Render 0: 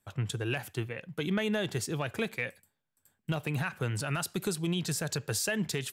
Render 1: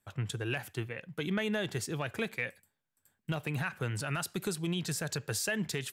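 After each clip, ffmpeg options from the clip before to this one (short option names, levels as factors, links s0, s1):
-af "equalizer=f=1800:w=1.5:g=2.5,volume=0.75"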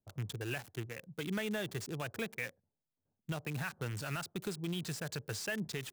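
-filter_complex "[0:a]acrossover=split=6800[s0][s1];[s1]acompressor=threshold=0.00501:ratio=4:attack=1:release=60[s2];[s0][s2]amix=inputs=2:normalize=0,acrossover=split=830[s3][s4];[s4]acrusher=bits=6:mix=0:aa=0.000001[s5];[s3][s5]amix=inputs=2:normalize=0,volume=0.596"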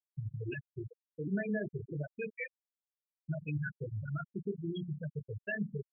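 -af "aecho=1:1:20|48|87.2|142.1|218.9:0.631|0.398|0.251|0.158|0.1,afftfilt=real='re*gte(hypot(re,im),0.0631)':imag='im*gte(hypot(re,im),0.0631)':win_size=1024:overlap=0.75,volume=1.12"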